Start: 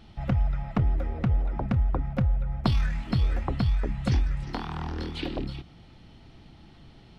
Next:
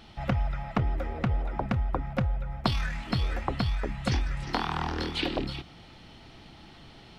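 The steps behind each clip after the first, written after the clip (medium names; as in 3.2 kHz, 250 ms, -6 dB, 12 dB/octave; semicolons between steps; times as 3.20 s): bass shelf 340 Hz -9.5 dB; gain riding 0.5 s; trim +5 dB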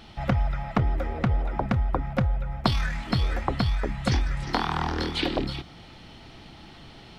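dynamic bell 2.7 kHz, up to -4 dB, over -56 dBFS, Q 5.7; trim +3.5 dB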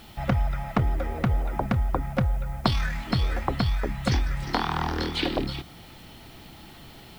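added noise blue -58 dBFS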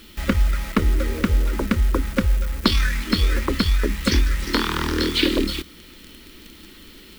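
in parallel at -3.5 dB: bit crusher 6-bit; on the sum: static phaser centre 310 Hz, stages 4; trim +4.5 dB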